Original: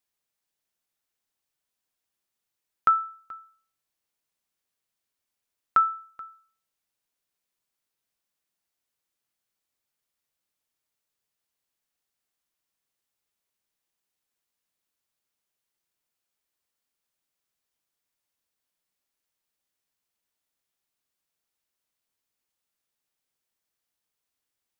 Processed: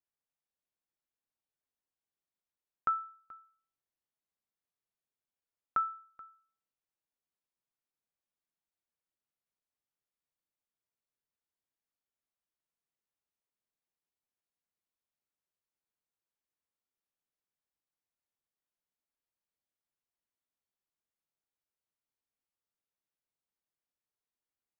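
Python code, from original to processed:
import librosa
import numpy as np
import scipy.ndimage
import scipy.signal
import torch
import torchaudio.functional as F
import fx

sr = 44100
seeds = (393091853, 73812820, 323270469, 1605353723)

y = fx.high_shelf(x, sr, hz=2300.0, db=-11.5)
y = y * 10.0 ** (-7.5 / 20.0)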